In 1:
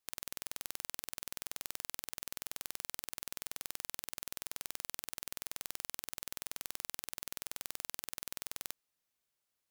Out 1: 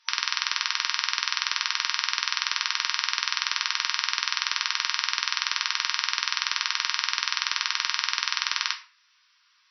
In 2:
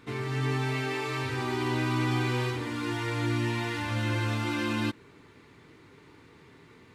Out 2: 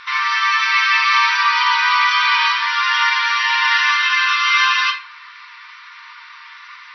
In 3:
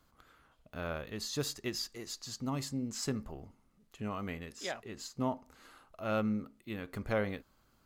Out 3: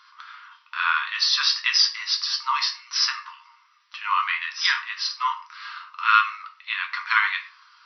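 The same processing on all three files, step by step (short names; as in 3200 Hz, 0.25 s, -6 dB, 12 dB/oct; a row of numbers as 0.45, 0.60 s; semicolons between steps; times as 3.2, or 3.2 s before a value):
in parallel at -0.5 dB: limiter -23 dBFS; on the sum: shoebox room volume 31 m³, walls mixed, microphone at 0.38 m; FFT band-pass 920–5900 Hz; normalise peaks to -3 dBFS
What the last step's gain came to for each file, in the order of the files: +19.5, +14.0, +14.0 dB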